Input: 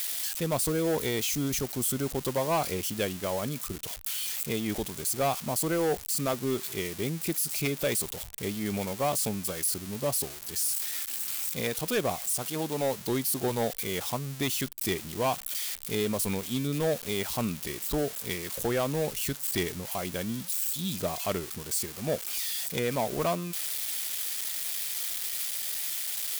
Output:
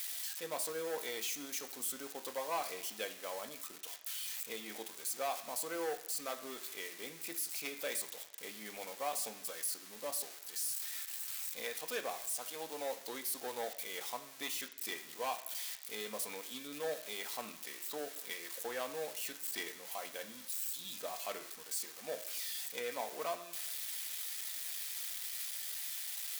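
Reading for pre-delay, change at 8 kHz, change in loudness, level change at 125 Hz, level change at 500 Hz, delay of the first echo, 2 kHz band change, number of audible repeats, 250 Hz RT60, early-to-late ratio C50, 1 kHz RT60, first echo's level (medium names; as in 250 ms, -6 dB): 3 ms, -9.0 dB, -10.0 dB, -31.5 dB, -11.5 dB, no echo, -7.0 dB, no echo, 0.90 s, 12.0 dB, 1.0 s, no echo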